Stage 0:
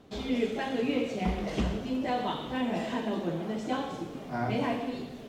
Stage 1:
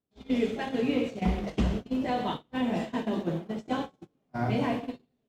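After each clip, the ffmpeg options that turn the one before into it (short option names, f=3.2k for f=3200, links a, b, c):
-af "agate=range=-35dB:threshold=-32dB:ratio=16:detection=peak,equalizer=f=99:w=0.43:g=4.5"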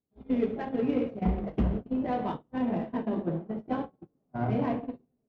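-af "adynamicsmooth=sensitivity=1:basefreq=1.1k"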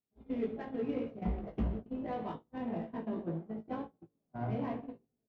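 -filter_complex "[0:a]asplit=2[a][b];[b]adelay=18,volume=-6dB[c];[a][c]amix=inputs=2:normalize=0,volume=-8.5dB"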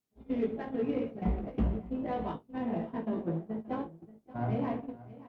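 -af "aecho=1:1:579:0.133,volume=4dB" -ar 48000 -c:a libopus -b:a 48k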